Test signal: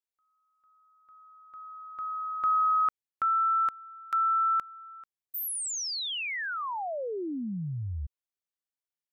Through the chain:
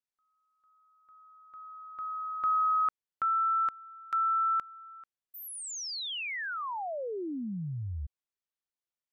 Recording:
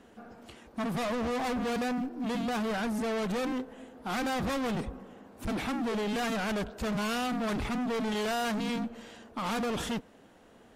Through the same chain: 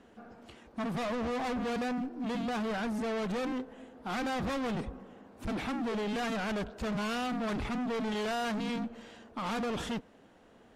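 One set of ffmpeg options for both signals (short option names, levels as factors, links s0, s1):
-af "highshelf=f=9700:g=-11.5,volume=0.794"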